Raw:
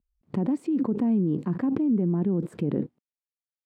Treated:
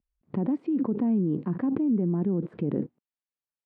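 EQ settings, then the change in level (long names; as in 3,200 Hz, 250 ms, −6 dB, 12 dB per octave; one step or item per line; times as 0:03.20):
high-frequency loss of the air 320 metres
low-shelf EQ 88 Hz −6.5 dB
0.0 dB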